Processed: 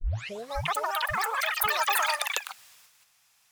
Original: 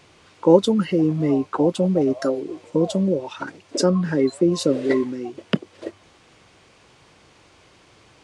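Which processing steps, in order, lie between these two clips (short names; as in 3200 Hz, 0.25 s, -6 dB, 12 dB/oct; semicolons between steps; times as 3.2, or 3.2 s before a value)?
tape start at the beginning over 1.53 s; bell 5900 Hz +2 dB 0.72 oct; speed mistake 33 rpm record played at 78 rpm; echoes that change speed 0.544 s, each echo +6 st, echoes 3; passive tone stack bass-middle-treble 10-0-10; gate -53 dBFS, range -9 dB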